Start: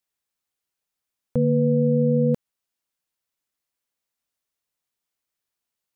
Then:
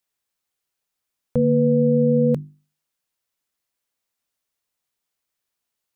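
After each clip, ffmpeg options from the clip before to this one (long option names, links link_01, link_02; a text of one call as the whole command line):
ffmpeg -i in.wav -af "bandreject=frequency=50:width_type=h:width=6,bandreject=frequency=100:width_type=h:width=6,bandreject=frequency=150:width_type=h:width=6,bandreject=frequency=200:width_type=h:width=6,bandreject=frequency=250:width_type=h:width=6,bandreject=frequency=300:width_type=h:width=6,bandreject=frequency=350:width_type=h:width=6,volume=3dB" out.wav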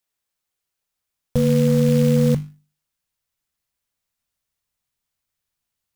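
ffmpeg -i in.wav -af "acrusher=bits=4:mode=log:mix=0:aa=0.000001,asubboost=boost=3.5:cutoff=180" out.wav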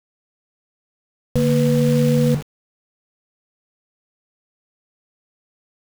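ffmpeg -i in.wav -af "aeval=exprs='val(0)*gte(abs(val(0)),0.0422)':channel_layout=same" out.wav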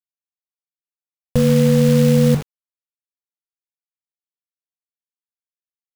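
ffmpeg -i in.wav -af "acrusher=bits=6:mode=log:mix=0:aa=0.000001,volume=3dB" out.wav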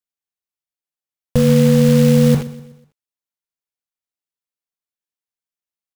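ffmpeg -i in.wav -af "aecho=1:1:124|248|372|496:0.141|0.0636|0.0286|0.0129,volume=1.5dB" out.wav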